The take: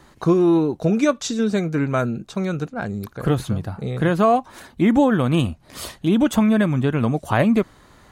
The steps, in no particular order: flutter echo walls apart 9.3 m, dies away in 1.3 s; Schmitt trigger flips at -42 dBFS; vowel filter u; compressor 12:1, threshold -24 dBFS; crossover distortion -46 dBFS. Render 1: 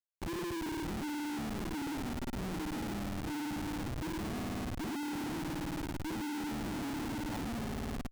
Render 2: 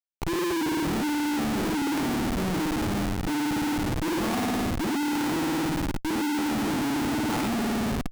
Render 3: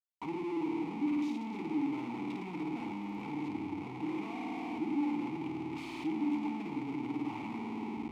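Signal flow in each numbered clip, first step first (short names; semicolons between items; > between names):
crossover distortion > flutter echo > compressor > vowel filter > Schmitt trigger; vowel filter > crossover distortion > flutter echo > Schmitt trigger > compressor; crossover distortion > compressor > flutter echo > Schmitt trigger > vowel filter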